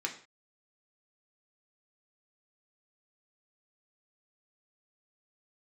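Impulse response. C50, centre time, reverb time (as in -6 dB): 10.5 dB, 14 ms, not exponential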